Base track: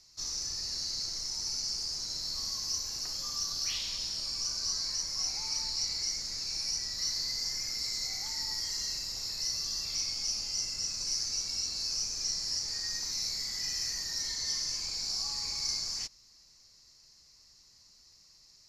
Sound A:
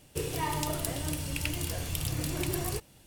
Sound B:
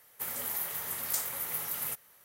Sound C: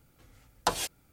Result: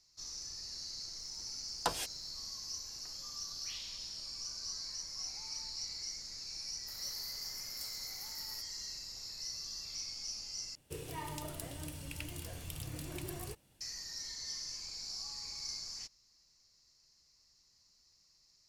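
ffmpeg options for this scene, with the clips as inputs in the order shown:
-filter_complex "[0:a]volume=-9dB,asplit=2[a][b];[a]atrim=end=10.754[c];[1:a]atrim=end=3.06,asetpts=PTS-STARTPTS,volume=-11dB[d];[b]atrim=start=13.806[e];[3:a]atrim=end=1.12,asetpts=PTS-STARTPTS,volume=-6.5dB,afade=t=in:d=0.004:c=hsin,afade=t=out:st=1.116:d=0.004:c=hsin,adelay=1190[f];[2:a]atrim=end=2.24,asetpts=PTS-STARTPTS,volume=-17.5dB,afade=t=in:d=0.004:c=hsin,afade=t=out:st=2.236:d=0.004:c=hsin,adelay=6670[g];[c][d]acrossfade=d=0.004:c1=hsin:c2=hsin[h];[h][e]acrossfade=d=0.004:c1=hsin:c2=hsin[i];[i][f][g]amix=inputs=3:normalize=0"

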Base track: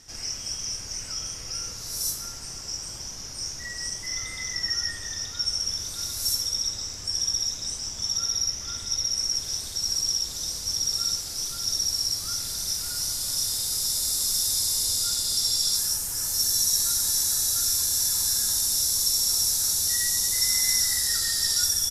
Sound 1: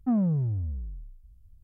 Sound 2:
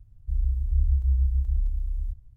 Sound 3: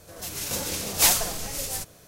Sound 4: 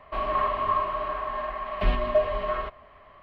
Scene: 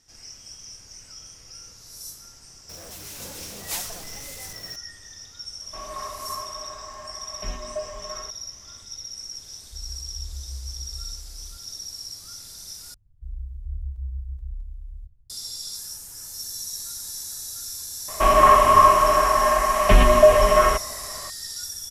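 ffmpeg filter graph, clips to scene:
-filter_complex "[4:a]asplit=2[a][b];[2:a]asplit=2[c][d];[0:a]volume=-10.5dB[e];[3:a]aeval=exprs='val(0)+0.5*0.0447*sgn(val(0))':c=same[f];[d]flanger=delay=4.5:depth=4.8:regen=74:speed=1.8:shape=triangular[g];[b]alimiter=level_in=14.5dB:limit=-1dB:release=50:level=0:latency=1[h];[e]asplit=2[i][j];[i]atrim=end=12.944[k];[g]atrim=end=2.36,asetpts=PTS-STARTPTS,volume=-4dB[l];[j]atrim=start=15.296[m];[f]atrim=end=2.07,asetpts=PTS-STARTPTS,volume=-12.5dB,afade=t=in:d=0.004:c=hsin,afade=t=out:st=2.066:d=0.004:c=hsin,adelay=2690[n];[a]atrim=end=3.22,asetpts=PTS-STARTPTS,volume=-9.5dB,afade=t=in:d=0.004:c=hsin,afade=t=out:st=3.216:d=0.004:c=hsin,adelay=247401S[o];[c]atrim=end=2.36,asetpts=PTS-STARTPTS,volume=-13.5dB,afade=t=in:d=0.004:c=hsin,afade=t=out:st=2.356:d=0.004:c=hsin,adelay=9440[p];[h]atrim=end=3.22,asetpts=PTS-STARTPTS,volume=-2.5dB,afade=t=in:d=0.004:c=hsin,afade=t=out:st=3.216:d=0.004:c=hsin,adelay=18080[q];[k][l]acrossfade=d=0.004:c1=hsin:c2=hsin[r];[r][m]acrossfade=d=0.004:c1=hsin:c2=hsin[s];[s][n][o][p][q]amix=inputs=5:normalize=0"

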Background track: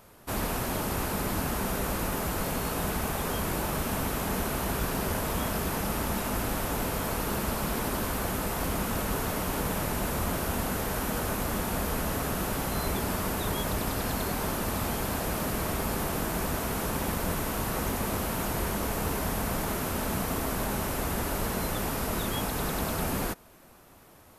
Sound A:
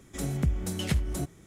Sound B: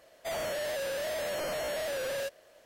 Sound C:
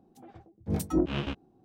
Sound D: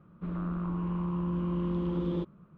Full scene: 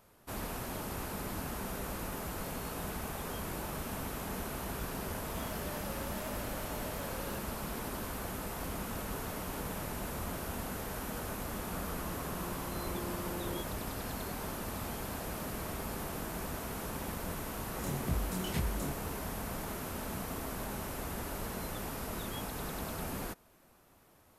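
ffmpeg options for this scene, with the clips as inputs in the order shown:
-filter_complex "[0:a]volume=-9dB[a];[4:a]highpass=420[b];[1:a]flanger=delay=22.5:depth=5:speed=1.9[c];[2:a]atrim=end=2.65,asetpts=PTS-STARTPTS,volume=-13.5dB,afade=t=in:d=0.004:c=hsin,afade=t=out:st=2.646:d=0.004:c=hsin,adelay=5100[d];[b]atrim=end=2.57,asetpts=PTS-STARTPTS,volume=-3.5dB,afade=t=in:d=0.004:c=hsin,afade=t=out:st=2.566:d=0.004:c=hsin,adelay=501858S[e];[c]atrim=end=1.46,asetpts=PTS-STARTPTS,volume=-4dB,afade=t=in:d=0.004:c=hsin,afade=t=out:st=1.456:d=0.004:c=hsin,adelay=17650[f];[a][d][e][f]amix=inputs=4:normalize=0"

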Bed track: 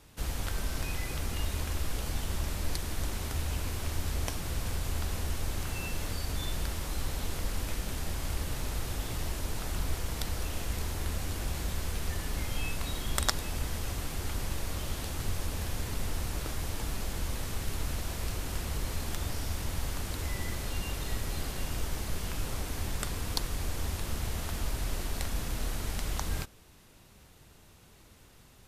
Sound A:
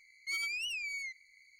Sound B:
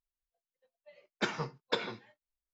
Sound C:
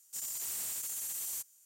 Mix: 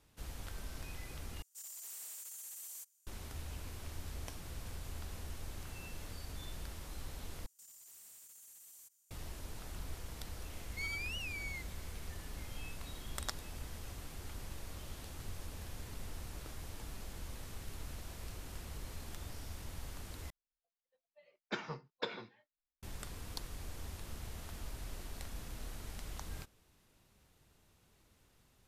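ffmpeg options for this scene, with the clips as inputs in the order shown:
-filter_complex "[3:a]asplit=2[a][b];[0:a]volume=-12dB[c];[a]highpass=390[d];[b]acompressor=threshold=-46dB:ratio=6:attack=3.2:release=140:knee=1:detection=peak[e];[1:a]highshelf=f=4k:g=-9.5[f];[2:a]lowpass=5.8k[g];[c]asplit=4[h][i][j][k];[h]atrim=end=1.424[l];[d]atrim=end=1.65,asetpts=PTS-STARTPTS,volume=-10dB[m];[i]atrim=start=3.066:end=7.464[n];[e]atrim=end=1.65,asetpts=PTS-STARTPTS,volume=-9.5dB[o];[j]atrim=start=9.106:end=20.304[p];[g]atrim=end=2.53,asetpts=PTS-STARTPTS,volume=-7dB[q];[k]atrim=start=22.826[r];[f]atrim=end=1.59,asetpts=PTS-STARTPTS,volume=-2.5dB,afade=t=in:d=0.004:c=hsin,afade=t=out:st=1.586:d=0.004:c=hsin,adelay=463050S[s];[l][m]acrossfade=d=0.004:c1=hsin:c2=hsin[t];[t][n]acrossfade=d=0.004:c1=hsin:c2=hsin[u];[u][o]acrossfade=d=0.004:c1=hsin:c2=hsin[v];[v][p]acrossfade=d=0.004:c1=hsin:c2=hsin[w];[w][q]acrossfade=d=0.004:c1=hsin:c2=hsin[x];[x][r]acrossfade=d=0.004:c1=hsin:c2=hsin[y];[y][s]amix=inputs=2:normalize=0"

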